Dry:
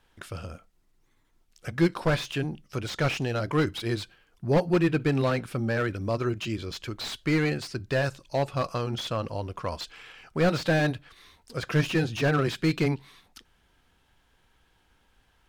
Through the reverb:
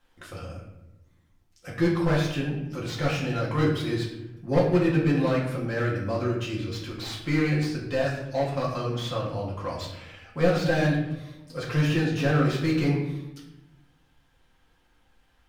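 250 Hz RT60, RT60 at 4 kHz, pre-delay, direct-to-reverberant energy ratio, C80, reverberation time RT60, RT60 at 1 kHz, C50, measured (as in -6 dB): 1.4 s, 0.60 s, 4 ms, -5.5 dB, 7.0 dB, 0.95 s, 0.85 s, 4.0 dB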